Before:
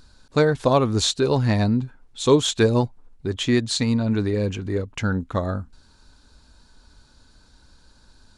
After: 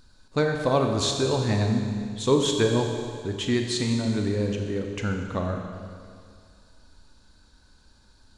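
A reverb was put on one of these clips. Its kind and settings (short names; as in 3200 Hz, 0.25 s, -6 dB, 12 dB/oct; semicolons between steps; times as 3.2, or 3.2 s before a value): Schroeder reverb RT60 2.2 s, combs from 30 ms, DRR 3 dB; gain -5 dB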